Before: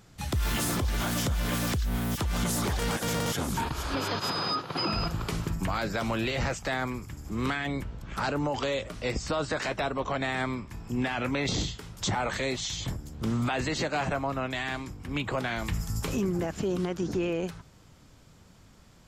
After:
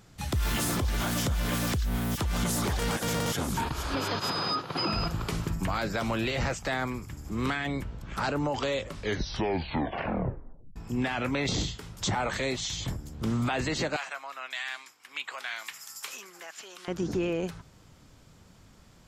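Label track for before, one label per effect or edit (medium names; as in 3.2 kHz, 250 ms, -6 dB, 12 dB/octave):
8.790000	8.790000	tape stop 1.97 s
13.960000	16.880000	high-pass 1.4 kHz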